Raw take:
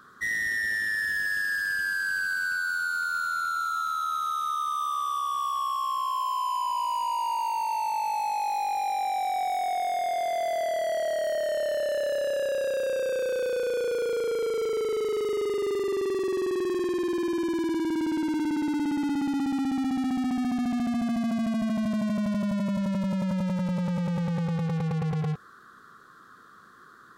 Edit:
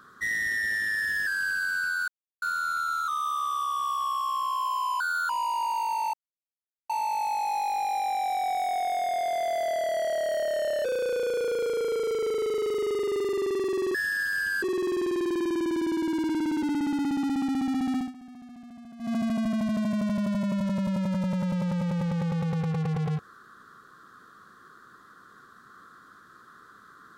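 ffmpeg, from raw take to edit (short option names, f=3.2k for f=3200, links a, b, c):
-filter_complex "[0:a]asplit=14[a][b][c][d][e][f][g][h][i][j][k][l][m][n];[a]atrim=end=1.272[o];[b]atrim=start=1.948:end=2.76,asetpts=PTS-STARTPTS,afade=t=out:st=0.808:d=0.004:c=hsin[p];[c]atrim=start=2.76:end=3.1,asetpts=PTS-STARTPTS,volume=0[q];[d]atrim=start=3.1:end=3.762,asetpts=PTS-STARTPTS,afade=t=in:d=0.004:c=hsin[r];[e]atrim=start=4.628:end=6.554[s];[f]atrim=start=6.55:end=6.98,asetpts=PTS-STARTPTS,asetrate=64386,aresample=44100,atrim=end_sample=12988,asetpts=PTS-STARTPTS[t];[g]atrim=start=6.976:end=7.82,asetpts=PTS-STARTPTS,afade=t=out:st=0.84:d=0.004:c=hsin,apad=pad_dur=0.76[u];[h]atrim=start=7.82:end=11.772,asetpts=PTS-STARTPTS,afade=t=in:d=0.004:c=hsin[v];[i]atrim=start=13.348:end=16.452[w];[j]atrim=start=1.268:end=1.952[x];[k]atrim=start=16.448:end=18.452[y];[l]atrim=start=18.788:end=20.29,asetpts=PTS-STARTPTS,afade=t=out:st=1.352:d=0.15:silence=0.11885[z];[m]atrim=start=20.29:end=21.15,asetpts=PTS-STARTPTS,volume=-18.5dB[aa];[n]atrim=start=21.15,asetpts=PTS-STARTPTS,afade=t=in:d=0.15:silence=0.11885[ab];[p][q][r]concat=n=3:v=0:a=1[ac];[o][ac]acrossfade=d=0.004:c1=hsin:c2=hsin[ad];[ad][s]acrossfade=d=0.004:c1=hsin:c2=hsin[ae];[ae][t]acrossfade=d=0.004:c1=hsin:c2=hsin[af];[u][v]concat=n=2:v=0:a=1[ag];[af][ag]acrossfade=d=0.004:c1=hsin:c2=hsin[ah];[ah][w]acrossfade=d=0.004:c1=hsin:c2=hsin[ai];[ai][x]acrossfade=d=0.004:c1=hsin:c2=hsin[aj];[aj][y]acrossfade=d=0.004:c1=hsin:c2=hsin[ak];[z][aa][ab]concat=n=3:v=0:a=1[al];[ak][al]acrossfade=d=0.004:c1=hsin:c2=hsin"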